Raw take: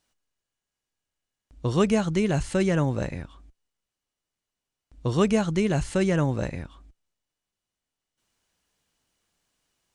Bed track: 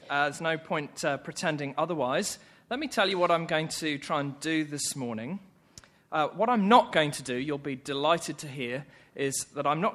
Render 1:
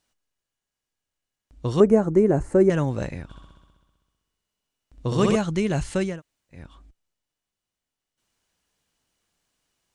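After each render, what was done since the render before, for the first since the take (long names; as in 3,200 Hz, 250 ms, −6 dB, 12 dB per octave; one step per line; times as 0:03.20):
0:01.80–0:02.70: drawn EQ curve 170 Hz 0 dB, 360 Hz +10 dB, 1,900 Hz −6 dB, 3,300 Hz −25 dB, 7,400 Hz −8 dB
0:03.23–0:05.36: flutter between parallel walls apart 11 metres, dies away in 1.4 s
0:06.10–0:06.61: fill with room tone, crossfade 0.24 s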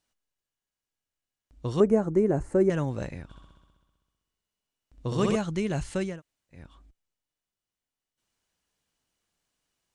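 level −5 dB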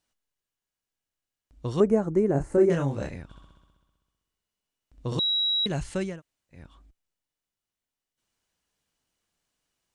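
0:02.32–0:03.16: double-tracking delay 29 ms −3.5 dB
0:05.19–0:05.66: beep over 3,870 Hz −22 dBFS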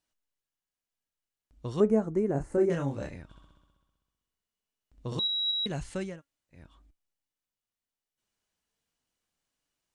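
flanger 0.3 Hz, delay 3.1 ms, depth 1.8 ms, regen +84%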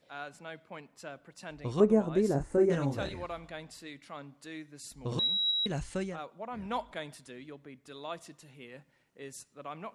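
mix in bed track −15.5 dB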